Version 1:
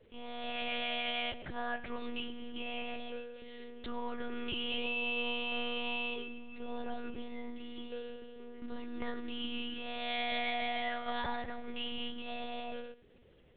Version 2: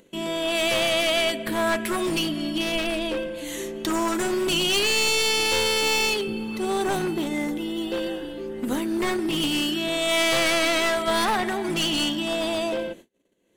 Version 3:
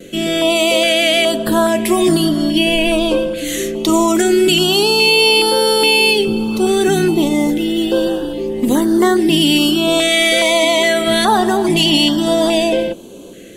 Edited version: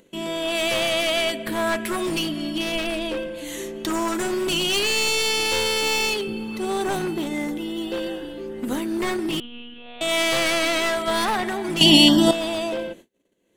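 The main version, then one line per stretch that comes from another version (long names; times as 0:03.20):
2
0:09.40–0:10.01: punch in from 1
0:11.81–0:12.31: punch in from 3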